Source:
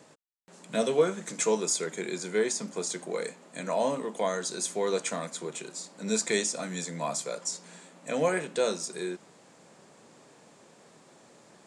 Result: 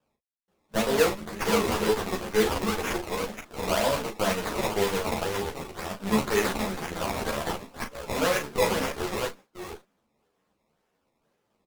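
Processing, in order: chunks repeated in reverse 425 ms, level -4.5 dB; gate -45 dBFS, range -17 dB; in parallel at +2 dB: peak limiter -21 dBFS, peak gain reduction 9 dB; on the sum: decimation with a swept rate 20×, swing 100% 2 Hz; tremolo saw up 3.7 Hz, depth 30%; word length cut 12-bit, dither none; doubling 37 ms -6.5 dB; Chebyshev shaper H 7 -23 dB, 8 -18 dB, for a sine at -9.5 dBFS; three-phase chorus

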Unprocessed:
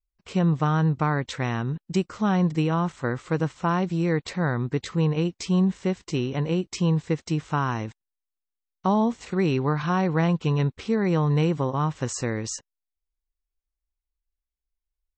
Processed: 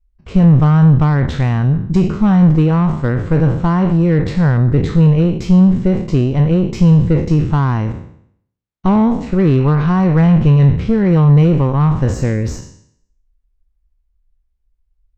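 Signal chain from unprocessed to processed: spectral sustain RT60 0.65 s; Chebyshev shaper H 5 -20 dB, 8 -22 dB, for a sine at -10 dBFS; RIAA curve playback; trim +1.5 dB

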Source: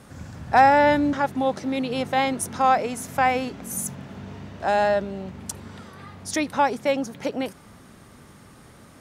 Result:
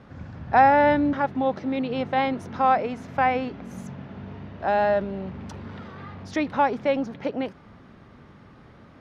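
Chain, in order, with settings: 4.88–7.16 s: companding laws mixed up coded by mu; distance through air 250 m

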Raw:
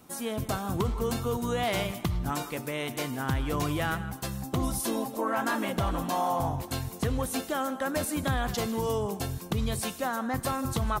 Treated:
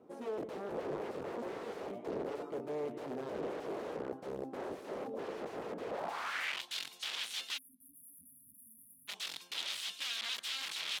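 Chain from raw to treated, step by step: integer overflow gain 28.5 dB; band-pass sweep 440 Hz -> 3.4 kHz, 5.87–6.62 s; spectral selection erased 7.58–9.08 s, 300–9600 Hz; trim +3.5 dB

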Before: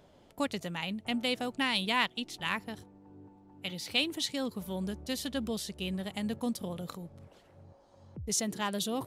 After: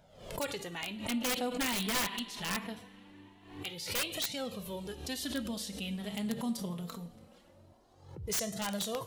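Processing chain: treble shelf 5.5 kHz +2.5 dB; two-slope reverb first 0.49 s, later 4.5 s, from -21 dB, DRR 7.5 dB; flange 0.23 Hz, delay 1.3 ms, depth 3.9 ms, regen -5%; integer overflow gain 25.5 dB; swell ahead of each attack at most 89 dB/s

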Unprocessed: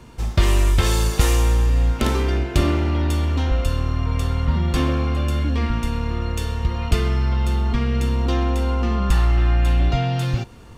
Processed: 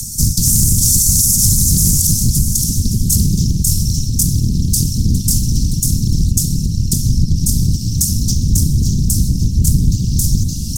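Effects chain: feedback delay 569 ms, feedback 27%, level -4 dB; compression 20:1, threshold -18 dBFS, peak gain reduction 9.5 dB; Chebyshev band-stop 100–5600 Hz, order 4; pre-emphasis filter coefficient 0.9; upward compressor, threshold -46 dBFS; whisper effect; 6.31–7.36 s: treble shelf 4 kHz -6.5 dB; loudness maximiser +30.5 dB; loudspeaker Doppler distortion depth 0.42 ms

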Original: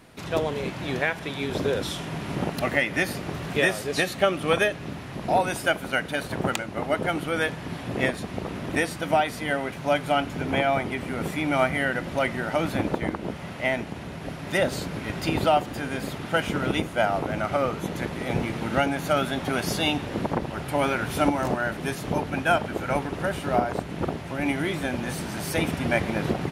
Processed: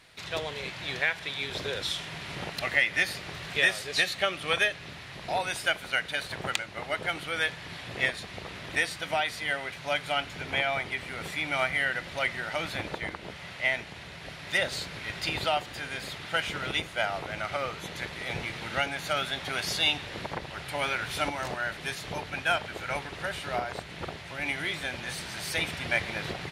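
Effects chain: graphic EQ 250/2000/4000/8000 Hz -9/+7/+10/+4 dB; trim -8 dB

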